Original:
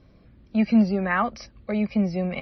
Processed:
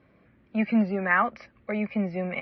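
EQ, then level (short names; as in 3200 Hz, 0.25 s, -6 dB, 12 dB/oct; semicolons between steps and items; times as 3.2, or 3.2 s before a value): HPF 67 Hz; synth low-pass 2100 Hz, resonance Q 1.8; low shelf 150 Hz -10 dB; -1.5 dB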